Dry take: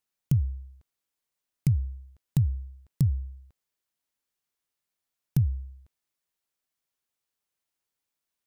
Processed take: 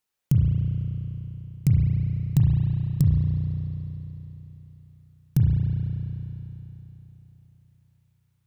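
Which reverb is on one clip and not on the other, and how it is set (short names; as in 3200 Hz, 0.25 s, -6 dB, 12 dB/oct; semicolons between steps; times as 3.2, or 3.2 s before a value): spring tank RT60 3.6 s, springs 33 ms, chirp 40 ms, DRR -2.5 dB; gain +2.5 dB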